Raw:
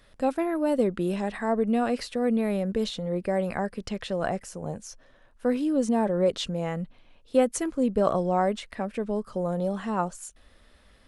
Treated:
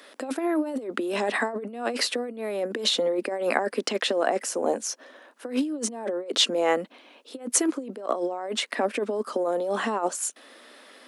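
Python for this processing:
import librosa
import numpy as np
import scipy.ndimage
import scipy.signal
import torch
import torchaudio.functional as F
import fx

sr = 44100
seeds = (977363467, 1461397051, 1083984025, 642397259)

y = fx.over_compress(x, sr, threshold_db=-30.0, ratio=-0.5)
y = scipy.signal.sosfilt(scipy.signal.butter(8, 250.0, 'highpass', fs=sr, output='sos'), y)
y = F.gain(torch.from_numpy(y), 7.0).numpy()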